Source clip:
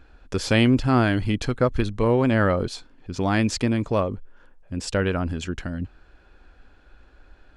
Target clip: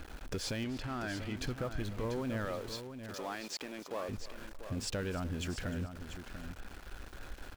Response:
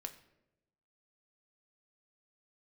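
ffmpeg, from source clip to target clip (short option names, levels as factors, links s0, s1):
-filter_complex "[0:a]alimiter=limit=0.188:level=0:latency=1,acompressor=threshold=0.0112:ratio=4,asoftclip=type=tanh:threshold=0.0211,asettb=1/sr,asplit=3[s0][s1][s2];[s0]atrim=end=2.454[s3];[s1]atrim=start=2.45:end=4.09,asetpts=PTS-STARTPTS,afade=t=in:d=0.004:c=qsin,afade=t=out:st=1.636:d=0.004:c=qsin,highpass=390,lowpass=7200[s4];[s2]atrim=start=4.086[s5];[s3][s4]acrossfade=d=0.004:c1=hsin:c2=qsin[s6];[s6][s5]acrossfade=d=0.004:c1=qsin:c2=hsin,aecho=1:1:301|602:0.141|0.0325,aeval=exprs='val(0)*gte(abs(val(0)),0.00282)':c=same,asettb=1/sr,asplit=3[s7][s8][s9];[s7]atrim=end=0.644[s10];[s8]atrim=start=0.64:end=1.36,asetpts=PTS-STARTPTS,afade=t=in:d=0.004:c=qsin,afade=t=out:st=0.716:d=0.004:c=qsin,asplit=2[s11][s12];[s12]highpass=f=720:p=1,volume=2.82,asoftclip=type=tanh:threshold=0.0237[s13];[s11][s13]amix=inputs=2:normalize=0,lowpass=f=3300:p=1,volume=0.501[s14];[s9]atrim=start=1.356[s15];[s10][s14]acrossfade=d=0.004:c1=hsin:c2=qsin[s16];[s16][s15]acrossfade=d=0.004:c1=qsin:c2=hsin,asplit=2[s17][s18];[s18]aecho=0:1:690:0.335[s19];[s17][s19]amix=inputs=2:normalize=0,volume=1.68"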